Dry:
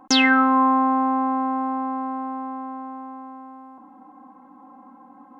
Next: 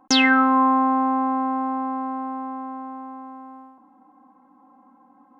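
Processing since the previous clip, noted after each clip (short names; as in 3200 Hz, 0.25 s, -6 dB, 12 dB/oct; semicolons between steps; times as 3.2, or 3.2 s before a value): gate -42 dBFS, range -7 dB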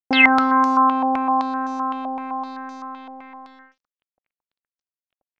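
crossover distortion -45 dBFS; stepped low-pass 7.8 Hz 680–5800 Hz; gain -1 dB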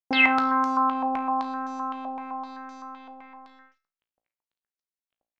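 resonator 57 Hz, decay 0.36 s, harmonics all, mix 70%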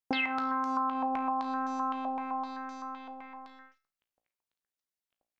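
compressor 16:1, threshold -27 dBFS, peak gain reduction 14.5 dB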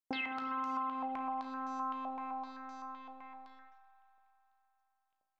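reverb RT60 3.7 s, pre-delay 52 ms, DRR 9.5 dB; gain -7.5 dB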